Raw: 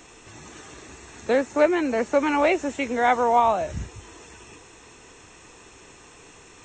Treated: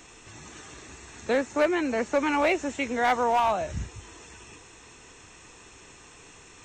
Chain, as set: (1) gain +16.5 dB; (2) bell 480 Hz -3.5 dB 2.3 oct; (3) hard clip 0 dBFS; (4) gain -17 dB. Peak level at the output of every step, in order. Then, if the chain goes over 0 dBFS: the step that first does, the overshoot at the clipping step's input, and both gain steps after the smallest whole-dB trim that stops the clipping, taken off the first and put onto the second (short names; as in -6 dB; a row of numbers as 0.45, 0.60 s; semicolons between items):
+9.5, +7.5, 0.0, -17.0 dBFS; step 1, 7.5 dB; step 1 +8.5 dB, step 4 -9 dB